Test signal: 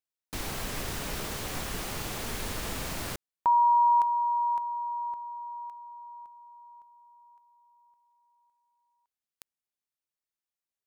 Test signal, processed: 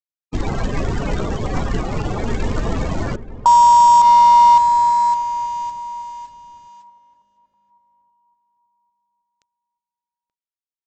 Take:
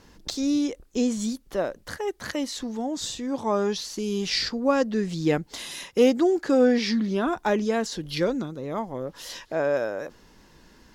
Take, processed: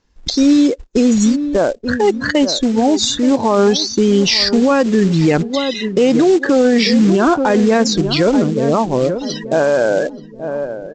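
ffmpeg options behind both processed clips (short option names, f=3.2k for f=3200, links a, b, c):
-filter_complex "[0:a]afftdn=nr=30:nf=-34,highshelf=f=2.1k:g=2.5,aresample=16000,acrusher=bits=5:mode=log:mix=0:aa=0.000001,aresample=44100,asplit=2[a][b];[b]adelay=880,lowpass=f=880:p=1,volume=-13dB,asplit=2[c][d];[d]adelay=880,lowpass=f=880:p=1,volume=0.38,asplit=2[e][f];[f]adelay=880,lowpass=f=880:p=1,volume=0.38,asplit=2[g][h];[h]adelay=880,lowpass=f=880:p=1,volume=0.38[i];[a][c][e][g][i]amix=inputs=5:normalize=0,alimiter=level_in=21dB:limit=-1dB:release=50:level=0:latency=1,volume=-4dB"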